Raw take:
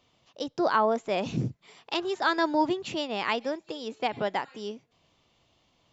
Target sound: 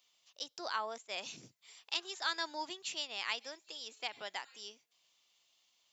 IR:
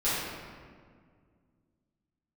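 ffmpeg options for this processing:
-filter_complex "[0:a]aderivative,acontrast=47,asettb=1/sr,asplit=3[link_01][link_02][link_03];[link_01]atrim=end=0.984[link_04];[link_02]atrim=start=0.98:end=1.43,asetpts=PTS-STARTPTS,afade=type=in:duration=0.004:curve=qsin,afade=type=out:start_time=0.446:duration=0.004:curve=qsin,agate=range=-33dB:threshold=-44dB:ratio=3:detection=peak[link_05];[link_03]atrim=start=1.426[link_06];[link_04][link_05]acrossfade=duration=0.004:curve1=hsin:curve2=qsin[link_07];[link_07][link_06]acrossfade=duration=0.004:curve1=qsin:curve2=hsin,volume=-2.5dB"

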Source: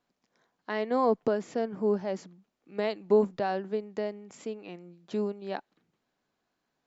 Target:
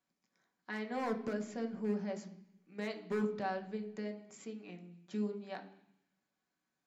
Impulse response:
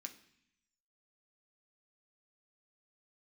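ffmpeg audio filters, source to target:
-filter_complex "[0:a]asoftclip=type=hard:threshold=-19.5dB[link_01];[1:a]atrim=start_sample=2205,asetrate=41013,aresample=44100[link_02];[link_01][link_02]afir=irnorm=-1:irlink=0,volume=-2dB"

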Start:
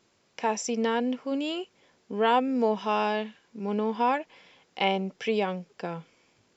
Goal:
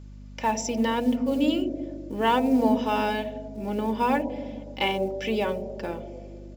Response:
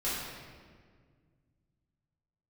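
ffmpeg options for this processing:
-filter_complex "[0:a]aecho=1:1:3.4:0.61,acrusher=bits=7:mode=log:mix=0:aa=0.000001,aeval=exprs='val(0)+0.00794*(sin(2*PI*50*n/s)+sin(2*PI*2*50*n/s)/2+sin(2*PI*3*50*n/s)/3+sin(2*PI*4*50*n/s)/4+sin(2*PI*5*50*n/s)/5)':channel_layout=same,asplit=2[link_01][link_02];[link_02]asuperpass=centerf=400:order=8:qfactor=0.84[link_03];[1:a]atrim=start_sample=2205[link_04];[link_03][link_04]afir=irnorm=-1:irlink=0,volume=-7.5dB[link_05];[link_01][link_05]amix=inputs=2:normalize=0"

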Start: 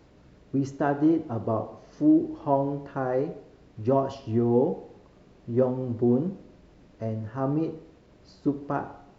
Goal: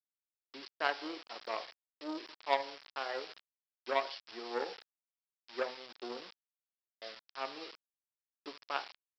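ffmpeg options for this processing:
ffmpeg -i in.wav -af "highpass=440,aeval=exprs='0.299*(cos(1*acos(clip(val(0)/0.299,-1,1)))-cos(1*PI/2))+0.0237*(cos(3*acos(clip(val(0)/0.299,-1,1)))-cos(3*PI/2))+0.00668*(cos(6*acos(clip(val(0)/0.299,-1,1)))-cos(6*PI/2))+0.015*(cos(7*acos(clip(val(0)/0.299,-1,1)))-cos(7*PI/2))':channel_layout=same,aresample=11025,aeval=exprs='val(0)*gte(abs(val(0)),0.00447)':channel_layout=same,aresample=44100,aderivative,volume=15.5dB" -ar 16000 -c:a pcm_mulaw out.wav

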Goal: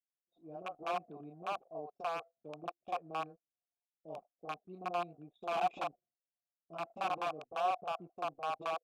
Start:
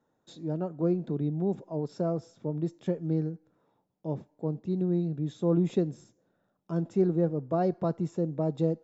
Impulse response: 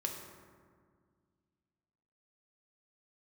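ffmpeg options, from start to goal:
-filter_complex "[0:a]highpass=frequency=90:poles=1,acrossover=split=1800[link_01][link_02];[link_02]dynaudnorm=framelen=400:gausssize=11:maxgain=5.5dB[link_03];[link_01][link_03]amix=inputs=2:normalize=0,aeval=exprs='(mod(11.2*val(0)+1,2)-1)/11.2':channel_layout=same,asplit=3[link_04][link_05][link_06];[link_04]bandpass=frequency=730:width_type=q:width=8,volume=0dB[link_07];[link_05]bandpass=frequency=1090:width_type=q:width=8,volume=-6dB[link_08];[link_06]bandpass=frequency=2440:width_type=q:width=8,volume=-9dB[link_09];[link_07][link_08][link_09]amix=inputs=3:normalize=0,acrossover=split=520[link_10][link_11];[link_11]adelay=40[link_12];[link_10][link_12]amix=inputs=2:normalize=0,anlmdn=0.0000251,volume=4dB"

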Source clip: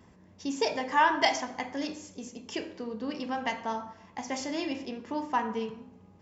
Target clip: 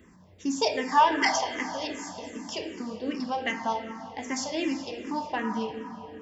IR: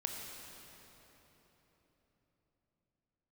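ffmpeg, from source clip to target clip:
-filter_complex "[0:a]asplit=2[link_01][link_02];[1:a]atrim=start_sample=2205,highshelf=frequency=6400:gain=8.5[link_03];[link_02][link_03]afir=irnorm=-1:irlink=0,volume=-1.5dB[link_04];[link_01][link_04]amix=inputs=2:normalize=0,asplit=2[link_05][link_06];[link_06]afreqshift=-2.6[link_07];[link_05][link_07]amix=inputs=2:normalize=1"

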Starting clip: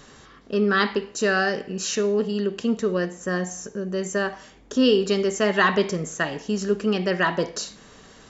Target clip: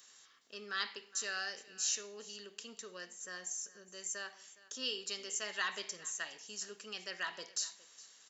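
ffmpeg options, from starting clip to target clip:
ffmpeg -i in.wav -af "aderivative,aecho=1:1:413:0.106,volume=-3.5dB" out.wav

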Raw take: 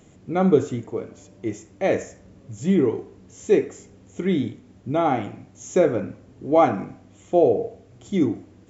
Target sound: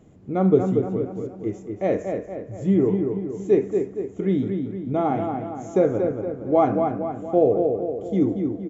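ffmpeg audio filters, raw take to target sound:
ffmpeg -i in.wav -filter_complex "[0:a]tiltshelf=frequency=1400:gain=6.5,asplit=2[link_01][link_02];[link_02]adelay=233,lowpass=frequency=3000:poles=1,volume=-5dB,asplit=2[link_03][link_04];[link_04]adelay=233,lowpass=frequency=3000:poles=1,volume=0.52,asplit=2[link_05][link_06];[link_06]adelay=233,lowpass=frequency=3000:poles=1,volume=0.52,asplit=2[link_07][link_08];[link_08]adelay=233,lowpass=frequency=3000:poles=1,volume=0.52,asplit=2[link_09][link_10];[link_10]adelay=233,lowpass=frequency=3000:poles=1,volume=0.52,asplit=2[link_11][link_12];[link_12]adelay=233,lowpass=frequency=3000:poles=1,volume=0.52,asplit=2[link_13][link_14];[link_14]adelay=233,lowpass=frequency=3000:poles=1,volume=0.52[link_15];[link_03][link_05][link_07][link_09][link_11][link_13][link_15]amix=inputs=7:normalize=0[link_16];[link_01][link_16]amix=inputs=2:normalize=0,volume=-6dB" out.wav

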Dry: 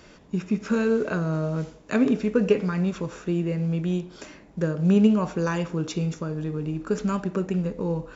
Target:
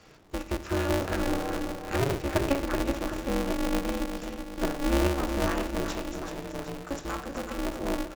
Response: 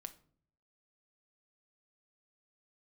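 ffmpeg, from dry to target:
-filter_complex "[0:a]asettb=1/sr,asplit=3[link_01][link_02][link_03];[link_01]atrim=end=5.974[link_04];[link_02]atrim=start=5.97:end=7.58,asetpts=PTS-STARTPTS,afade=type=in:duration=0.004:curve=qsin,afade=type=out:start_time=1.606:duration=0.004:curve=qsin,bass=frequency=250:gain=-12,treble=frequency=4000:gain=2[link_05];[link_03]atrim=start=7.576[link_06];[link_04][link_05]acrossfade=duration=0.004:curve1=hsin:curve2=qsin[link_07];[link_07][link_06]acrossfade=duration=0.004:curve1=qsin:curve2=hsin,acrossover=split=170|800|2100[link_08][link_09][link_10][link_11];[link_08]alimiter=level_in=9.5dB:limit=-24dB:level=0:latency=1,volume=-9.5dB[link_12];[link_12][link_09][link_10][link_11]amix=inputs=4:normalize=0,aecho=1:1:380|760|1140|1520|1900|2280:0.447|0.223|0.112|0.0558|0.0279|0.014[link_13];[1:a]atrim=start_sample=2205,afade=type=out:start_time=0.23:duration=0.01,atrim=end_sample=10584[link_14];[link_13][link_14]afir=irnorm=-1:irlink=0,aeval=exprs='val(0)*sgn(sin(2*PI*140*n/s))':channel_layout=same"

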